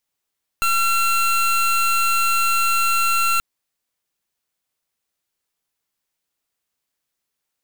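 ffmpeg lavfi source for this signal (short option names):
-f lavfi -i "aevalsrc='0.126*(2*lt(mod(1360*t,1),0.25)-1)':d=2.78:s=44100"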